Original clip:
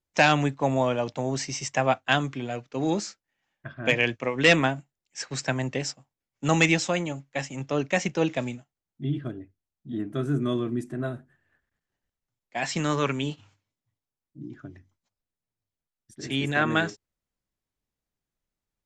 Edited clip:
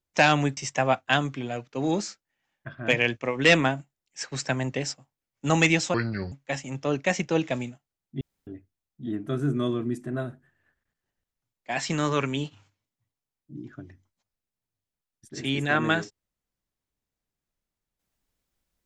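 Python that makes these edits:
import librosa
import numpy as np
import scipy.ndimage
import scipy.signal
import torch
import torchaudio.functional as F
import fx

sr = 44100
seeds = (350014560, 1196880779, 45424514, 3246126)

y = fx.edit(x, sr, fx.cut(start_s=0.57, length_s=0.99),
    fx.speed_span(start_s=6.93, length_s=0.25, speed=0.66),
    fx.room_tone_fill(start_s=9.07, length_s=0.26), tone=tone)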